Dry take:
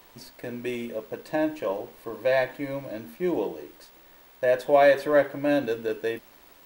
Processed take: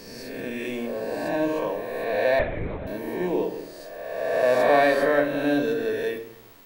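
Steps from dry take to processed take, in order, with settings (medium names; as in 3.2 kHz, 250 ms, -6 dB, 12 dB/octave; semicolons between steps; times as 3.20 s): reverse spectral sustain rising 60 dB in 1.72 s; simulated room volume 2200 m³, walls furnished, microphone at 1.6 m; 2.39–2.87 s: LPC vocoder at 8 kHz whisper; trim -2.5 dB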